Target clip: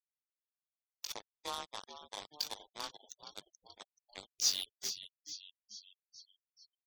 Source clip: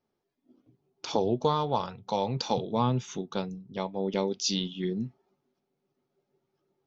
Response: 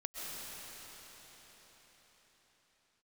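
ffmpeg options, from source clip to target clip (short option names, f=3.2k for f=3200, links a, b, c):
-filter_complex "[0:a]asplit=2[a][b];[b]adelay=20,volume=-6dB[c];[a][c]amix=inputs=2:normalize=0,afreqshift=27,aderivative,asplit=2[d][e];[e]aecho=0:1:396|792|1188|1584:0.282|0.113|0.0451|0.018[f];[d][f]amix=inputs=2:normalize=0,acrusher=bits=5:mix=0:aa=0.5,bandreject=f=50:t=h:w=6,bandreject=f=100:t=h:w=6,bandreject=f=150:t=h:w=6,bandreject=f=200:t=h:w=6,acrusher=bits=4:mode=log:mix=0:aa=0.000001,asplit=2[g][h];[h]asplit=6[i][j][k][l][m][n];[i]adelay=431,afreqshift=-90,volume=-11dB[o];[j]adelay=862,afreqshift=-180,volume=-15.9dB[p];[k]adelay=1293,afreqshift=-270,volume=-20.8dB[q];[l]adelay=1724,afreqshift=-360,volume=-25.6dB[r];[m]adelay=2155,afreqshift=-450,volume=-30.5dB[s];[n]adelay=2586,afreqshift=-540,volume=-35.4dB[t];[o][p][q][r][s][t]amix=inputs=6:normalize=0[u];[g][u]amix=inputs=2:normalize=0,afftfilt=real='re*gte(hypot(re,im),0.00224)':imag='im*gte(hypot(re,im),0.00224)':win_size=1024:overlap=0.75,volume=1dB"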